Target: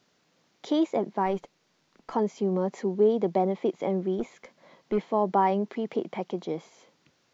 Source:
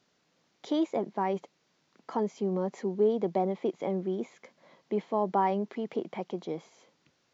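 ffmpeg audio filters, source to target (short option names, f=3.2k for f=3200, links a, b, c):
-filter_complex "[0:a]asettb=1/sr,asplit=3[a][b][c];[a]atrim=end=1.264[d];[b]atrim=start=1.26:end=2.13,asetpts=PTS-STARTPTS,afade=t=in:d=0.004:c=qsin,afade=t=out:st=0.866:d=0.004:c=qsin,aeval=exprs='if(lt(val(0),0),0.708*val(0),val(0))':c=same[e];[c]atrim=start=2.126[f];[d][e]acrossfade=d=0.004:c1=hsin:c2=qsin[g];[g][f]acrossfade=d=0.004:c1=qsin:c2=hsin,asettb=1/sr,asplit=3[h][i][j];[h]atrim=end=4.194[k];[i]atrim=start=4.19:end=4.98,asetpts=PTS-STARTPTS,afade=t=in:d=0.004:c=qsin,afade=t=out:st=0.786:d=0.004:c=qsin,aeval=exprs='0.1*(cos(1*acos(clip(val(0)/0.1,-1,1)))-cos(1*PI/2))+0.00562*(cos(6*acos(clip(val(0)/0.1,-1,1)))-cos(6*PI/2))':c=same[l];[j]atrim=start=4.976[m];[k][l]acrossfade=d=0.004:c1=hsin:c2=qsin[n];[n][m]acrossfade=d=0.004:c1=qsin:c2=hsin,volume=3.5dB"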